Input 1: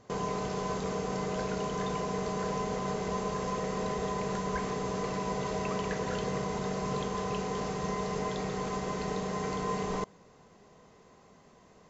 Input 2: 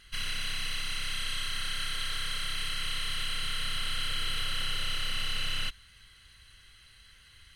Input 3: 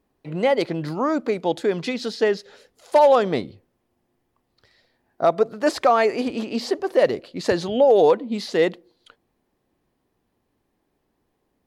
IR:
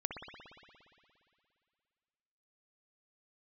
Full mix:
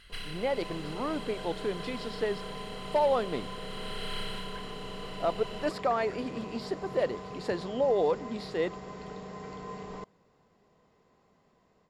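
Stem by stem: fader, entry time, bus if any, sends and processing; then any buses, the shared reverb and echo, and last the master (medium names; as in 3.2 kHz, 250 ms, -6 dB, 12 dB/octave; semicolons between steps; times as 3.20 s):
-20.0 dB, 0.00 s, no send, level rider gain up to 11.5 dB
+1.5 dB, 0.00 s, no send, compression, threshold -31 dBFS, peak gain reduction 5 dB; auto duck -10 dB, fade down 0.45 s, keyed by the third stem
-11.0 dB, 0.00 s, no send, none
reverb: none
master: treble shelf 6.6 kHz -5 dB; band-stop 6.2 kHz, Q 6.7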